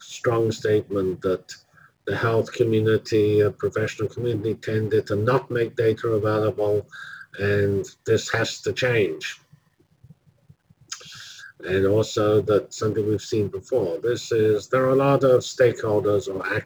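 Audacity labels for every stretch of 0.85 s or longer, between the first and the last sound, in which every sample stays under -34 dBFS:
9.330000	10.920000	silence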